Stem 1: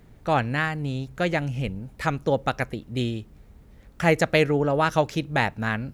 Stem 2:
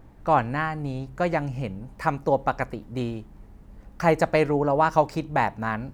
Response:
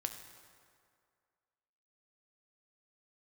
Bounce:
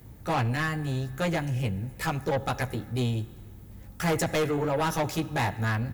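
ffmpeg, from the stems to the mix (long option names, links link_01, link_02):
-filter_complex "[0:a]aecho=1:1:2.4:0.36,volume=-6.5dB,asplit=2[link_01][link_02];[link_02]volume=-7dB[link_03];[1:a]equalizer=frequency=90:width=0.49:gain=13,volume=-1,adelay=14,volume=-5dB[link_04];[2:a]atrim=start_sample=2205[link_05];[link_03][link_05]afir=irnorm=-1:irlink=0[link_06];[link_01][link_04][link_06]amix=inputs=3:normalize=0,highpass=58,aemphasis=mode=production:type=50fm,asoftclip=type=tanh:threshold=-22dB"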